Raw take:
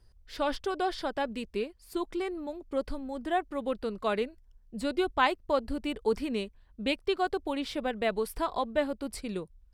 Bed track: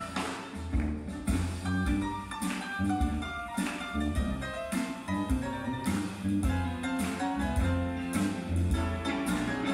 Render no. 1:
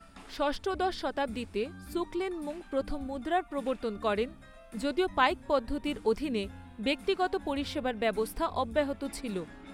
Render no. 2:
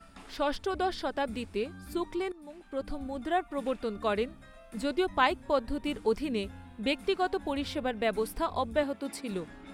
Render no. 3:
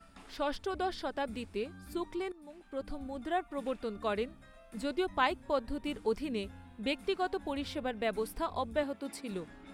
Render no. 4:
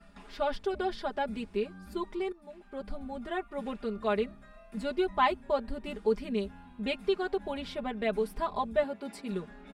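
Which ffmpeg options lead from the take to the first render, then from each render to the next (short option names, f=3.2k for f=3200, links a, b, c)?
-filter_complex "[1:a]volume=-17.5dB[a];[0:a][a]amix=inputs=2:normalize=0"
-filter_complex "[0:a]asettb=1/sr,asplit=3[a][b][c];[a]atrim=end=8.834[d];[b]atrim=start=8.83:end=9.31,asetpts=PTS-STARTPTS,afade=t=in:d=0.004:c=qsin,afade=t=out:st=0.476:d=0.004:c=qsin,highpass=150[e];[c]atrim=start=9.306[f];[d][e]acrossfade=d=0.004:c1=hsin:c2=qsin[g];[g][f]acrossfade=d=0.004:c1=qsin:c2=hsin,asplit=2[h][i];[h]atrim=end=2.32,asetpts=PTS-STARTPTS,afade=t=out:st=2.316:d=0.004:c=hsin:silence=0.149624[j];[i]atrim=start=2.32,asetpts=PTS-STARTPTS,afade=t=in:d=0.79:silence=0.149624[k];[j][k]concat=n=2:v=0:a=1"
-af "volume=-4dB"
-af "aemphasis=mode=reproduction:type=cd,aecho=1:1:4.9:0.88"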